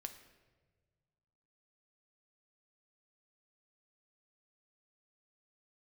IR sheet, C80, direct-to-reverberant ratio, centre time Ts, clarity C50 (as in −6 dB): 12.5 dB, 7.0 dB, 14 ms, 10.5 dB